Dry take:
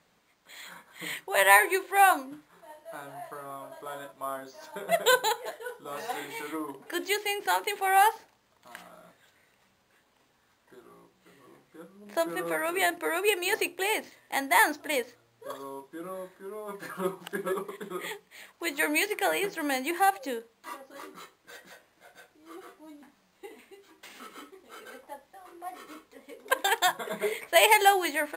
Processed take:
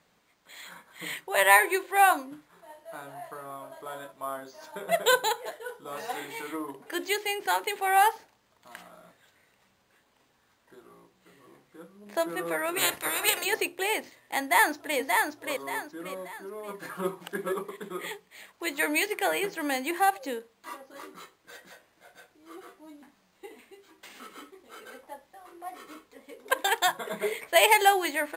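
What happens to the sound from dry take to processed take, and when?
12.76–13.44 spectral limiter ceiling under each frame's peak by 25 dB
14.41–14.98 echo throw 0.58 s, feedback 35%, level -3.5 dB

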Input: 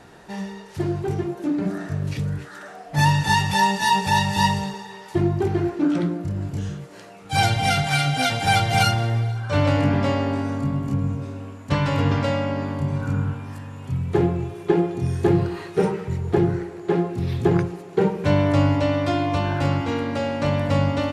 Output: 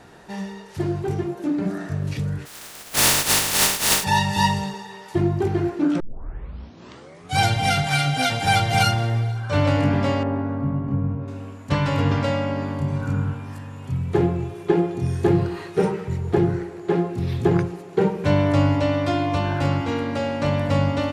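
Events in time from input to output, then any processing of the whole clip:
2.45–4.03 spectral contrast lowered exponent 0.14
6 tape start 1.38 s
10.23–11.28 LPF 1500 Hz

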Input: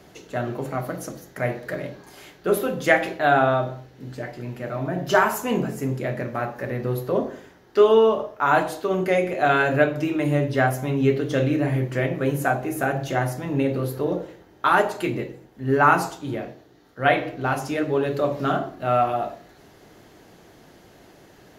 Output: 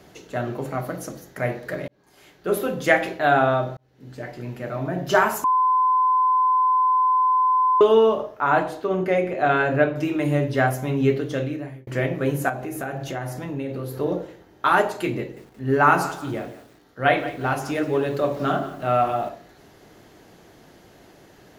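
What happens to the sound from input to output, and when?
1.88–2.67 fade in
3.77–4.33 fade in
5.44–7.81 bleep 1020 Hz -15.5 dBFS
8.4–9.97 high shelf 4200 Hz -11 dB
11.1–11.87 fade out
12.49–13.96 compressor 2.5:1, threshold -28 dBFS
15.19–19.29 lo-fi delay 0.176 s, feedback 35%, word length 7-bit, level -14.5 dB

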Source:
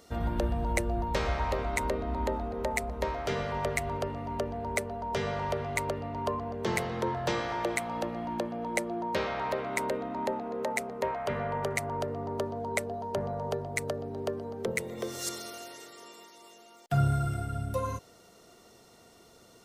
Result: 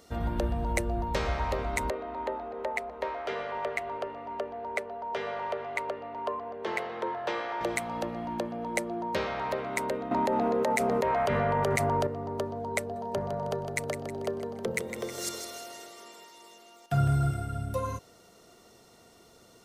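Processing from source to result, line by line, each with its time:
1.9–7.61 three-band isolator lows -20 dB, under 320 Hz, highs -14 dB, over 3700 Hz
10.11–12.07 fast leveller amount 100%
12.8–17.31 feedback echo 0.158 s, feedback 45%, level -8.5 dB

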